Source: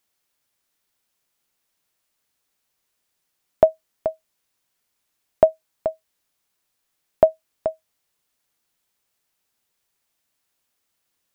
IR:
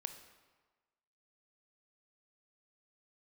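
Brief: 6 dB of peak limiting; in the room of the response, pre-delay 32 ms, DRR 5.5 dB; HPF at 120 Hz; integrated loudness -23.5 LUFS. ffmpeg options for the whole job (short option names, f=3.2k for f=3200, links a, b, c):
-filter_complex "[0:a]highpass=120,alimiter=limit=-7dB:level=0:latency=1,asplit=2[a][b];[1:a]atrim=start_sample=2205,adelay=32[c];[b][c]afir=irnorm=-1:irlink=0,volume=-3dB[d];[a][d]amix=inputs=2:normalize=0,volume=4.5dB"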